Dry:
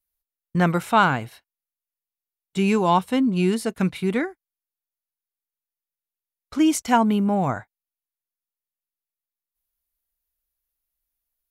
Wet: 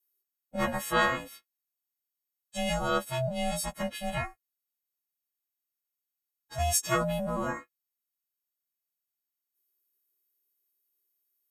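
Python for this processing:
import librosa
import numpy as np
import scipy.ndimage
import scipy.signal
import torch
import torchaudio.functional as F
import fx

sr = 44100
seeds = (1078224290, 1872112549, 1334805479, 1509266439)

y = fx.freq_snap(x, sr, grid_st=3)
y = fx.cheby_harmonics(y, sr, harmonics=(7,), levels_db=(-45,), full_scale_db=-3.0)
y = y * np.sin(2.0 * np.pi * 390.0 * np.arange(len(y)) / sr)
y = y * 10.0 ** (-7.0 / 20.0)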